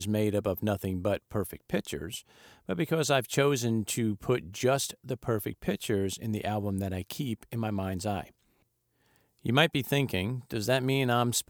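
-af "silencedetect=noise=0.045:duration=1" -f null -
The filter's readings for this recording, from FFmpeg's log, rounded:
silence_start: 8.21
silence_end: 9.46 | silence_duration: 1.25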